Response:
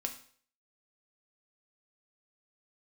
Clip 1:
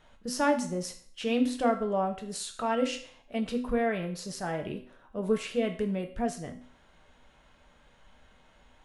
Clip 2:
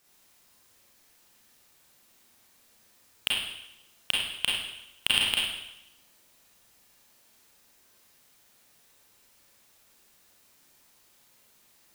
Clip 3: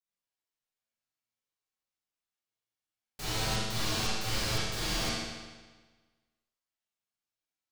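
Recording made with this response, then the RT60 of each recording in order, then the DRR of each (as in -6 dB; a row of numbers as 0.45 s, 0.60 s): 1; 0.50 s, 0.85 s, 1.4 s; 3.5 dB, -5.0 dB, -11.0 dB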